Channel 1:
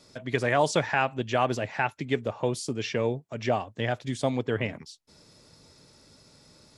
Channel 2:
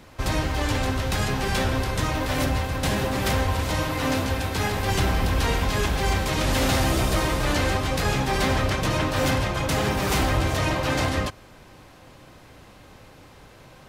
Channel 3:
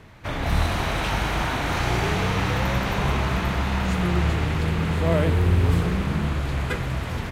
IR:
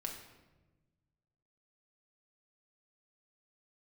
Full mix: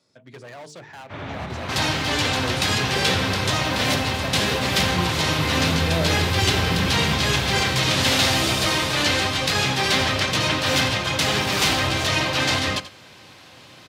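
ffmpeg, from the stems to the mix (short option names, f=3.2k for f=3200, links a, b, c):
-filter_complex "[0:a]highshelf=f=8.2k:g=-5,bandreject=f=50:t=h:w=6,bandreject=f=100:t=h:w=6,bandreject=f=150:t=h:w=6,bandreject=f=200:t=h:w=6,bandreject=f=250:t=h:w=6,bandreject=f=300:t=h:w=6,bandreject=f=350:t=h:w=6,bandreject=f=400:t=h:w=6,bandreject=f=450:t=h:w=6,asoftclip=type=hard:threshold=-26.5dB,volume=-6dB,afade=t=in:st=1.28:d=0.59:silence=0.354813,asplit=2[a][b];[1:a]equalizer=f=3.8k:w=0.59:g=11.5,adelay=1500,volume=-6dB,asplit=2[c][d];[d]volume=-14.5dB[e];[2:a]lowpass=4.4k,alimiter=limit=-14.5dB:level=0:latency=1:release=69,adelay=850,volume=-5.5dB,asplit=2[f][g];[g]volume=-5dB[h];[b]apad=whole_len=359909[i];[f][i]sidechaincompress=threshold=-58dB:ratio=3:attack=16:release=135[j];[e][h]amix=inputs=2:normalize=0,aecho=0:1:85:1[k];[a][c][j][k]amix=inputs=4:normalize=0,acontrast=24,highpass=f=84:w=0.5412,highpass=f=84:w=1.3066"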